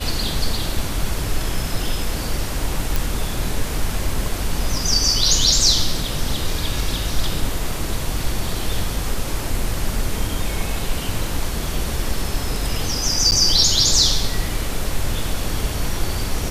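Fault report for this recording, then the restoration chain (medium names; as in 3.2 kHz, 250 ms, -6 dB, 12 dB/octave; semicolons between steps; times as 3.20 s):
2.96 s: pop
13.31–13.32 s: dropout 9.5 ms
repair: de-click; interpolate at 13.31 s, 9.5 ms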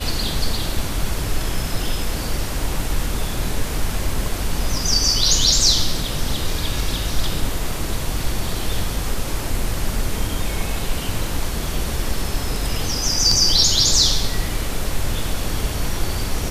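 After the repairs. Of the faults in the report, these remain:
nothing left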